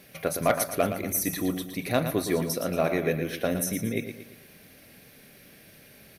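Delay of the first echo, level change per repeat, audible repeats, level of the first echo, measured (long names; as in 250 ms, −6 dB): 115 ms, −7.5 dB, 4, −9.0 dB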